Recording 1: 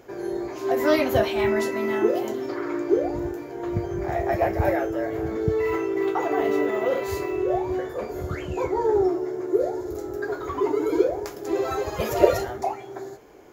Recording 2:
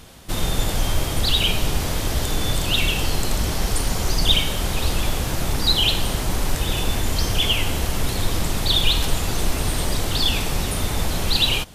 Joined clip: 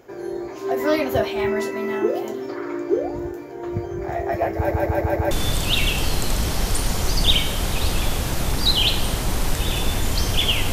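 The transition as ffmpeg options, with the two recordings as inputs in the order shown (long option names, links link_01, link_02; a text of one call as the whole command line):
ffmpeg -i cue0.wav -i cue1.wav -filter_complex "[0:a]apad=whole_dur=10.72,atrim=end=10.72,asplit=5[link_01][link_02][link_03][link_04][link_05];[link_01]atrim=end=4.712[link_06];[link_02]atrim=start=4.558:end=4.712[link_07];[link_03]atrim=start=4.558:end=4.712[link_08];[link_04]atrim=start=4.558:end=4.712[link_09];[link_05]atrim=start=4.558:end=4.712[link_10];[1:a]atrim=start=2.318:end=7.73[link_11];[link_06][link_07]acrossfade=duration=0.004:curve1=hsin:curve2=hsin[link_12];[link_12][link_08]acrossfade=duration=0.004:curve1=hsin:curve2=hsin[link_13];[link_13][link_09]acrossfade=duration=0.004:curve1=hsin:curve2=hsin[link_14];[link_14][link_10]acrossfade=duration=0.004:curve1=hsin:curve2=hsin[link_15];[link_15][link_11]acrossfade=duration=0.004:curve1=hsin:curve2=hsin" out.wav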